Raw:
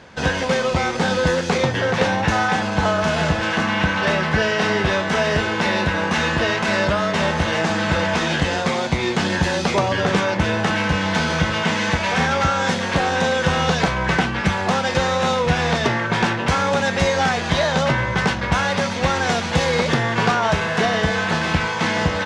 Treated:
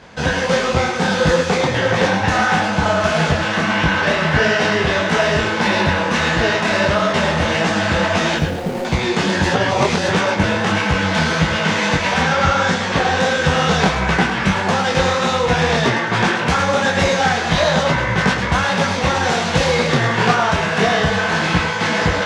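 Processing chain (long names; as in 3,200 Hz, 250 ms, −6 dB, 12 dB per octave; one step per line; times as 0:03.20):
0:08.37–0:08.85: running median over 41 samples
0:12.21–0:13.17: low-pass filter 8,000 Hz 12 dB per octave
feedback echo with a high-pass in the loop 107 ms, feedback 40%, level −7 dB
0:09.53–0:10.08: reverse
micro pitch shift up and down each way 54 cents
level +6 dB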